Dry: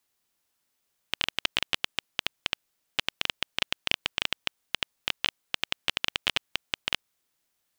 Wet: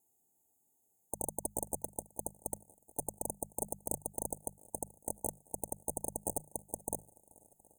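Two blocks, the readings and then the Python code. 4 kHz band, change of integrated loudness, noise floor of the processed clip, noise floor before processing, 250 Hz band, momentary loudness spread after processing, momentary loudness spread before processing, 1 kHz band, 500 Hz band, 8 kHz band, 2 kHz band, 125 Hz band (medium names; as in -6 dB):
under -40 dB, -9.0 dB, -76 dBFS, -78 dBFS, +1.0 dB, 5 LU, 6 LU, -5.5 dB, +1.5 dB, +6.5 dB, under -40 dB, -0.5 dB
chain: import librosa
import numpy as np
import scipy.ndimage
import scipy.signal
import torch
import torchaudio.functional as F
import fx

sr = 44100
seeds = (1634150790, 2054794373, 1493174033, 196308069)

p1 = fx.hum_notches(x, sr, base_hz=50, count=4)
p2 = fx.vibrato(p1, sr, rate_hz=5.5, depth_cents=48.0)
p3 = fx.notch_comb(p2, sr, f0_hz=580.0)
p4 = 10.0 ** (-23.5 / 20.0) * np.tanh(p3 / 10.0 ** (-23.5 / 20.0))
p5 = fx.cheby_harmonics(p4, sr, harmonics=(7,), levels_db=(-22,), full_scale_db=-23.5)
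p6 = fx.brickwall_bandstop(p5, sr, low_hz=910.0, high_hz=6300.0)
p7 = p6 + fx.echo_swing(p6, sr, ms=720, ratio=1.5, feedback_pct=49, wet_db=-24.0, dry=0)
y = p7 * librosa.db_to_amplitude(12.0)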